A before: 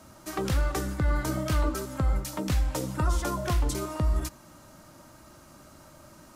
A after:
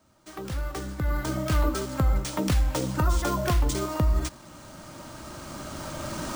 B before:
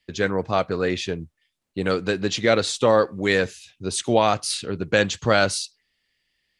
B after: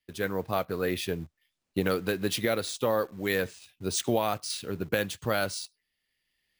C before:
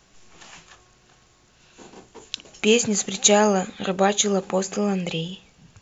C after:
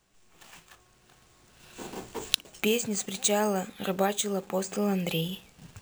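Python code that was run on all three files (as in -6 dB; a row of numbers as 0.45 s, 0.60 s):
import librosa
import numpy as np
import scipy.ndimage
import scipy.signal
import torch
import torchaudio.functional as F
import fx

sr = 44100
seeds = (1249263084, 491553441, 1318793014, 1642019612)

p1 = fx.recorder_agc(x, sr, target_db=-5.5, rise_db_per_s=7.8, max_gain_db=30)
p2 = fx.quant_dither(p1, sr, seeds[0], bits=6, dither='none')
p3 = p1 + F.gain(torch.from_numpy(p2), -9.0).numpy()
p4 = np.repeat(p3[::3], 3)[:len(p3)]
y = F.gain(torch.from_numpy(p4), -12.5).numpy()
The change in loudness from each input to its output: +1.5 LU, -8.0 LU, -8.0 LU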